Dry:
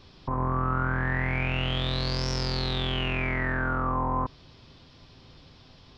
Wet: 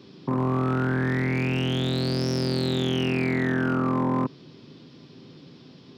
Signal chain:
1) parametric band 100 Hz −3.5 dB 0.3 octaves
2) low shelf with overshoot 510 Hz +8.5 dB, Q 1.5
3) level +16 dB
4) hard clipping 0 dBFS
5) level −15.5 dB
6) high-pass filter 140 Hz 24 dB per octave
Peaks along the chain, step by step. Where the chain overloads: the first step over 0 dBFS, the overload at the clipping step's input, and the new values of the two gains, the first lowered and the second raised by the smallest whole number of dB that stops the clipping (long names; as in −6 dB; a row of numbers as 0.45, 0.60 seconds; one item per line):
−14.5, −10.0, +6.0, 0.0, −15.5, −14.0 dBFS
step 3, 6.0 dB
step 3 +10 dB, step 5 −9.5 dB